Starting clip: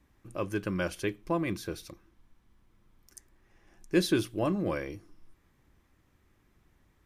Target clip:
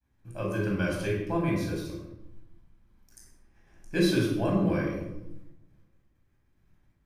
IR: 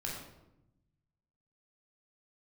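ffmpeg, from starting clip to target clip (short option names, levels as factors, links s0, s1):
-filter_complex "[0:a]agate=range=0.0224:threshold=0.00126:ratio=3:detection=peak[s0];[1:a]atrim=start_sample=2205[s1];[s0][s1]afir=irnorm=-1:irlink=0"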